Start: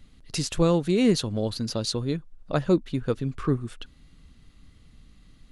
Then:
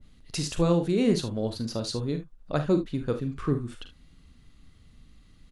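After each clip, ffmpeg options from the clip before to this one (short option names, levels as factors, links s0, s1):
-af "aecho=1:1:41|53|74:0.316|0.237|0.2,adynamicequalizer=threshold=0.00891:dfrequency=1600:dqfactor=0.7:tfrequency=1600:tqfactor=0.7:attack=5:release=100:ratio=0.375:range=2:mode=cutabove:tftype=highshelf,volume=0.75"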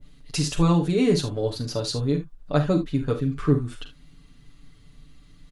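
-af "aecho=1:1:6.9:0.79,volume=1.26"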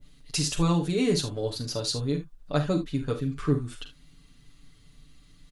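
-af "highshelf=f=2800:g=7,volume=0.596"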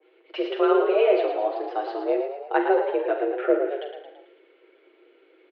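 -filter_complex "[0:a]asplit=2[s0][s1];[s1]asplit=6[s2][s3][s4][s5][s6][s7];[s2]adelay=111,afreqshift=35,volume=0.447[s8];[s3]adelay=222,afreqshift=70,volume=0.237[s9];[s4]adelay=333,afreqshift=105,volume=0.126[s10];[s5]adelay=444,afreqshift=140,volume=0.0668[s11];[s6]adelay=555,afreqshift=175,volume=0.0351[s12];[s7]adelay=666,afreqshift=210,volume=0.0186[s13];[s8][s9][s10][s11][s12][s13]amix=inputs=6:normalize=0[s14];[s0][s14]amix=inputs=2:normalize=0,highpass=f=150:t=q:w=0.5412,highpass=f=150:t=q:w=1.307,lowpass=f=2600:t=q:w=0.5176,lowpass=f=2600:t=q:w=0.7071,lowpass=f=2600:t=q:w=1.932,afreqshift=200,volume=1.68"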